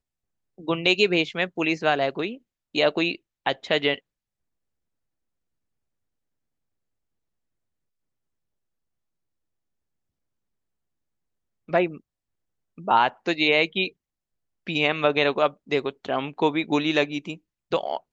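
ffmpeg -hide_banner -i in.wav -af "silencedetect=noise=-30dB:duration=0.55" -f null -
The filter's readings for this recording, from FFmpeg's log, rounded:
silence_start: 0.00
silence_end: 0.68 | silence_duration: 0.68
silence_start: 3.95
silence_end: 11.73 | silence_duration: 7.78
silence_start: 11.90
silence_end: 12.88 | silence_duration: 0.98
silence_start: 13.88
silence_end: 14.67 | silence_duration: 0.79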